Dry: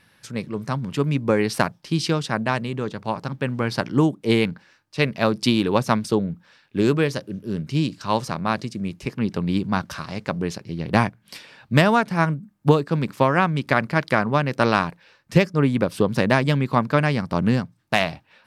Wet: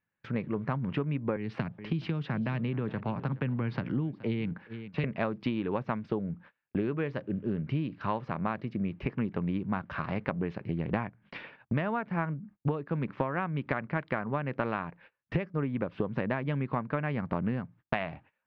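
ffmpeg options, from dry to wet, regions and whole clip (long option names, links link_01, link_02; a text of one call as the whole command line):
ffmpeg -i in.wav -filter_complex "[0:a]asettb=1/sr,asplit=3[link_01][link_02][link_03];[link_01]atrim=end=1.364[link_04];[link_02]atrim=start=1.36:end=5.04,asetpts=PTS-STARTPTS,afade=type=in:duration=0.004:curve=qsin,afade=type=out:start_time=3.676:duration=0.004:curve=qsin,acrossover=split=250|3000[link_05][link_06][link_07];[link_06]acompressor=threshold=-33dB:ratio=5:attack=3.2:release=140:knee=2.83:detection=peak[link_08];[link_05][link_08][link_07]amix=inputs=3:normalize=0,aecho=1:1:422:0.1,atrim=end_sample=162288[link_09];[link_03]atrim=start=5.036[link_10];[link_04][link_09]acrossfade=duration=0.004:curve1=hsin:curve2=qsin[link_11];[link_11][link_10]acrossfade=duration=0.004:curve1=qsin:curve2=hsin,agate=range=-30dB:threshold=-45dB:ratio=16:detection=peak,lowpass=frequency=2500:width=0.5412,lowpass=frequency=2500:width=1.3066,acompressor=threshold=-30dB:ratio=10,volume=2.5dB" out.wav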